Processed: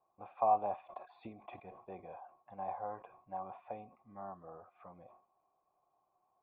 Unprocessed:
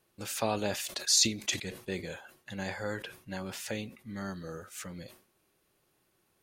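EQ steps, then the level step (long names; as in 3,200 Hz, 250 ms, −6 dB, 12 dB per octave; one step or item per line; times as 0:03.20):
formant resonators in series a
+10.5 dB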